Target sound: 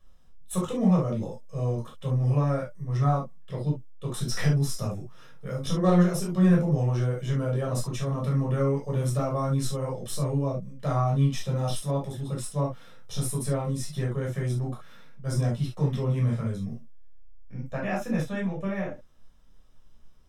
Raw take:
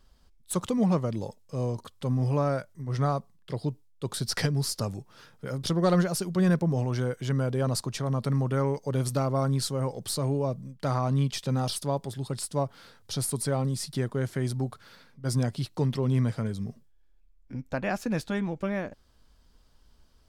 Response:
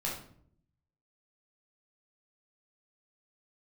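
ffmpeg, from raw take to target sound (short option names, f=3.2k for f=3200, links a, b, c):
-filter_complex "[0:a]asuperstop=centerf=4500:order=4:qfactor=5.5[a];[1:a]atrim=start_sample=2205,atrim=end_sample=3528[b];[a][b]afir=irnorm=-1:irlink=0,volume=-4dB"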